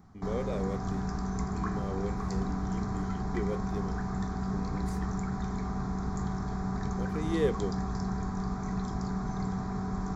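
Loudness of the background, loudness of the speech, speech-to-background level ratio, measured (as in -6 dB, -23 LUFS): -34.0 LUFS, -38.5 LUFS, -4.5 dB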